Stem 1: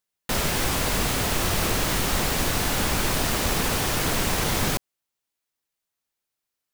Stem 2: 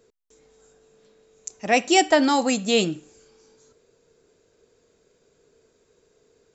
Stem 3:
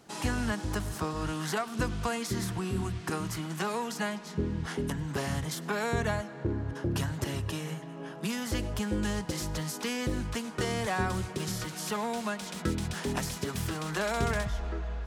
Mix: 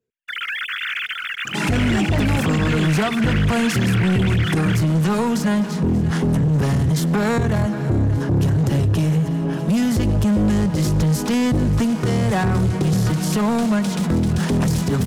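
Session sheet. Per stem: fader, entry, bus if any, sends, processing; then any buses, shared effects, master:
-7.0 dB, 0.00 s, no bus, no send, echo send -21.5 dB, formants replaced by sine waves; Chebyshev high-pass 1.4 kHz, order 5
-19.5 dB, 0.00 s, bus A, no send, no echo send, waveshaping leveller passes 2
+2.5 dB, 1.45 s, bus A, no send, echo send -17 dB, none
bus A: 0.0 dB, peaking EQ 140 Hz +15 dB 2.6 oct; peak limiter -14.5 dBFS, peak gain reduction 10 dB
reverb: none
echo: feedback delay 589 ms, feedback 57%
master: waveshaping leveller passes 2

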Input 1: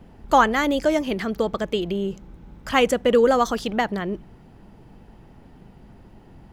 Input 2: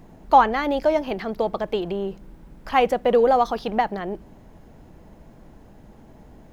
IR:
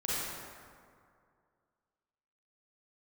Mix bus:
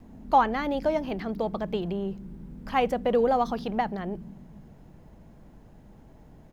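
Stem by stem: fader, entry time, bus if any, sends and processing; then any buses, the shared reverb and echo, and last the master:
-8.0 dB, 0.00 s, send -9.5 dB, spectral blur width 638 ms; inverse Chebyshev low-pass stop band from 800 Hz, stop band 60 dB
-6.0 dB, 2 ms, no send, none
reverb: on, RT60 2.2 s, pre-delay 33 ms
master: none

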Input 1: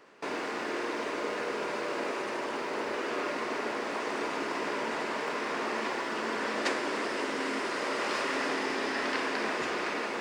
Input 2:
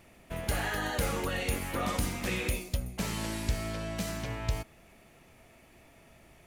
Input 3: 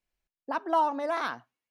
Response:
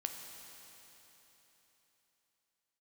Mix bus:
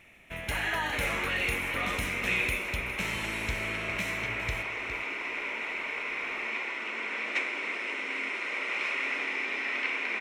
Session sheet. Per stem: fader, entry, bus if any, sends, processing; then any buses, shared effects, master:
-10.5 dB, 0.70 s, no send, no echo send, high-pass 150 Hz 12 dB/octave; peaking EQ 2.3 kHz +6.5 dB 0.4 oct; band-stop 1.7 kHz, Q 8.6
-5.0 dB, 0.00 s, no send, echo send -12.5 dB, none
-14.5 dB, 0.00 s, no send, no echo send, none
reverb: none
echo: delay 409 ms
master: Butterworth band-stop 4.7 kHz, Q 8; peaking EQ 2.3 kHz +14.5 dB 1.1 oct

